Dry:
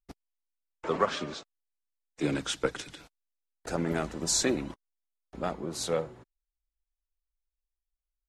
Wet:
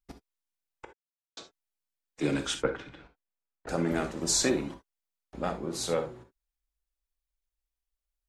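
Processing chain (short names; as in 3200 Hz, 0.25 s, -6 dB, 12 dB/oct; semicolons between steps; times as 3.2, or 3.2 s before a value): 0.85–1.37 mute; 2.55–3.69 LPF 2000 Hz 12 dB/oct; non-linear reverb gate 90 ms flat, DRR 6.5 dB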